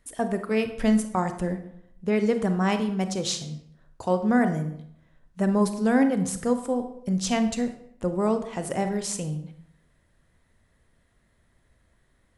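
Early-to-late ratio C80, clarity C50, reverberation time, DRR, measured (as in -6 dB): 13.0 dB, 10.5 dB, 0.70 s, 8.0 dB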